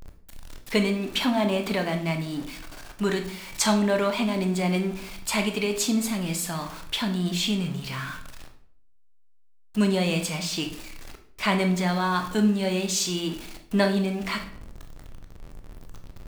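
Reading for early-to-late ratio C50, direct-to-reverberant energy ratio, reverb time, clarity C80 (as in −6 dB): 10.0 dB, 5.0 dB, 0.60 s, 13.5 dB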